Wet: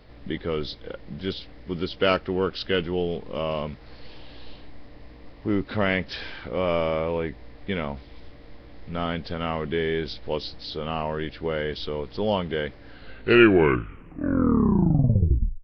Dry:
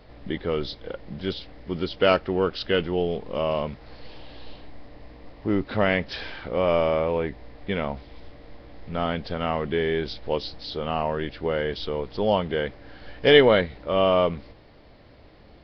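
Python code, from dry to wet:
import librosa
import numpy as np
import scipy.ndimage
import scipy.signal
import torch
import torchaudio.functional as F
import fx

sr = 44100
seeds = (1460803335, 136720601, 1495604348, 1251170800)

y = fx.tape_stop_end(x, sr, length_s=2.77)
y = fx.peak_eq(y, sr, hz=700.0, db=-4.0, octaves=1.1)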